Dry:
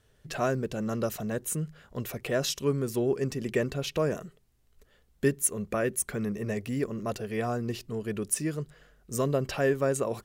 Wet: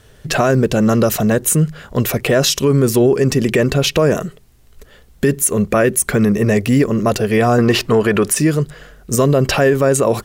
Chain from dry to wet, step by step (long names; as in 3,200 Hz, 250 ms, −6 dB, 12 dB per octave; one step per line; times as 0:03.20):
0:07.58–0:08.35: parametric band 1,200 Hz +13 dB 3 octaves
boost into a limiter +22.5 dB
level −4 dB